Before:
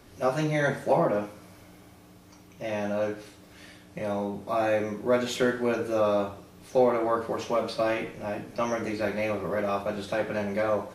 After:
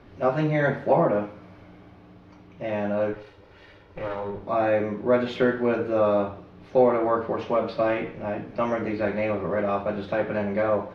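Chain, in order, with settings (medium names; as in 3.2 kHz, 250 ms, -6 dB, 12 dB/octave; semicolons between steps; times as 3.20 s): 3.13–4.43 s: comb filter that takes the minimum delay 2.1 ms; distance through air 310 m; trim +4 dB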